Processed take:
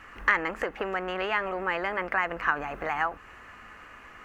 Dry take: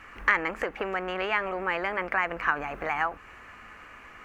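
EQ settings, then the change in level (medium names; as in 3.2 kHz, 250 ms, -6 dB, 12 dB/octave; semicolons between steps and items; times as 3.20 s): band-stop 2.3 kHz, Q 14; 0.0 dB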